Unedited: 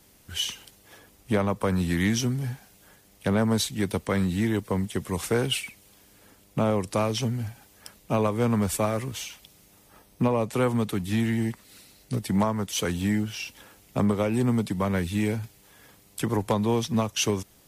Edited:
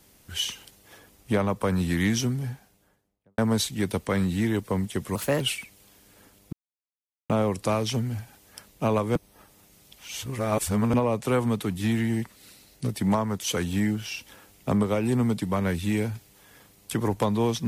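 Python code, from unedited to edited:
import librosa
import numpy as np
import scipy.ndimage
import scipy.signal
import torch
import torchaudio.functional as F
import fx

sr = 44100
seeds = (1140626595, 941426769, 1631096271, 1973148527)

y = fx.studio_fade_out(x, sr, start_s=2.2, length_s=1.18)
y = fx.edit(y, sr, fx.speed_span(start_s=5.15, length_s=0.31, speed=1.21),
    fx.insert_silence(at_s=6.58, length_s=0.77),
    fx.reverse_span(start_s=8.44, length_s=1.78), tone=tone)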